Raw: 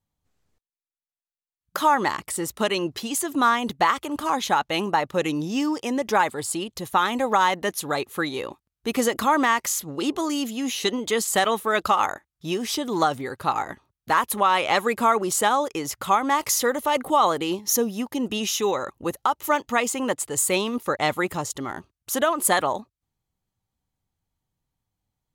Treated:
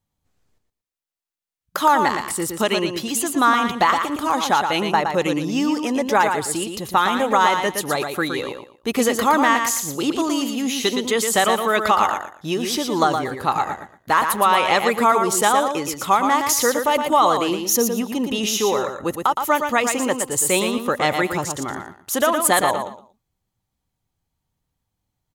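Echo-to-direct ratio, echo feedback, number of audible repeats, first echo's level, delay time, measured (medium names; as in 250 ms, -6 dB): -6.0 dB, 23%, 3, -6.0 dB, 116 ms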